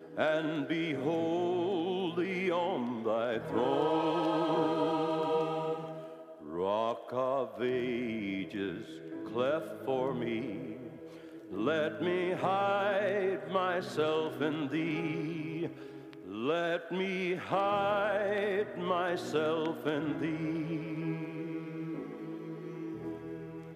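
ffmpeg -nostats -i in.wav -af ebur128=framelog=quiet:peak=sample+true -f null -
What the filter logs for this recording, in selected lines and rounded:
Integrated loudness:
  I:         -33.1 LUFS
  Threshold: -43.4 LUFS
Loudness range:
  LRA:         4.7 LU
  Threshold: -53.3 LUFS
  LRA low:   -36.0 LUFS
  LRA high:  -31.3 LUFS
Sample peak:
  Peak:      -16.4 dBFS
True peak:
  Peak:      -16.3 dBFS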